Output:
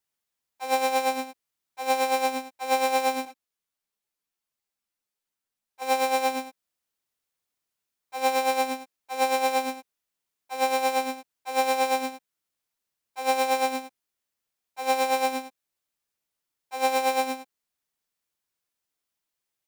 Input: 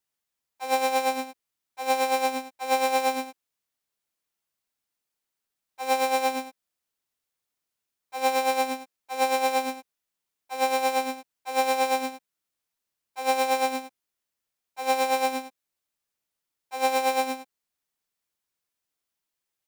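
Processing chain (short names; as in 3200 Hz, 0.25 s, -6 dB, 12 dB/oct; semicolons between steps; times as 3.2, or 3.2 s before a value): 3.25–5.82 ensemble effect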